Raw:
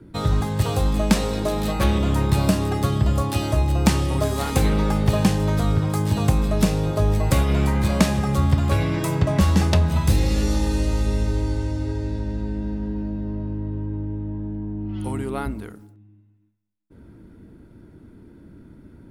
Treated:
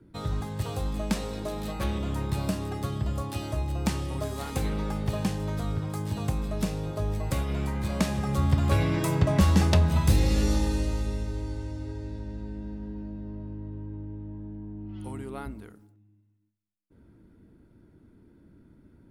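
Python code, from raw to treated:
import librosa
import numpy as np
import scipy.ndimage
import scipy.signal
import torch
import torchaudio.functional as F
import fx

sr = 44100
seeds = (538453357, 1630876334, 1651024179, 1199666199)

y = fx.gain(x, sr, db=fx.line((7.79, -10.0), (8.75, -3.0), (10.52, -3.0), (11.26, -10.0)))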